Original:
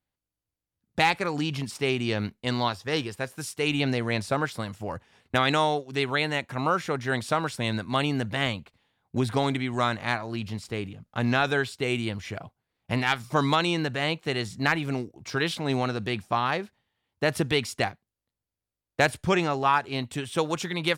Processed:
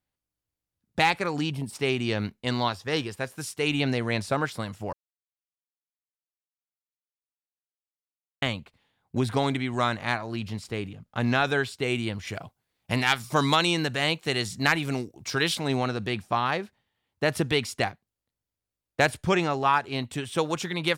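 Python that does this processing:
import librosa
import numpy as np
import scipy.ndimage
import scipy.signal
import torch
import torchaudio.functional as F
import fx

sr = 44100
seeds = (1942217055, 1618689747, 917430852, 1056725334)

y = fx.spec_box(x, sr, start_s=1.52, length_s=0.21, low_hz=1000.0, high_hz=7600.0, gain_db=-11)
y = fx.high_shelf(y, sr, hz=3600.0, db=8.5, at=(12.27, 15.68))
y = fx.edit(y, sr, fx.silence(start_s=4.93, length_s=3.49), tone=tone)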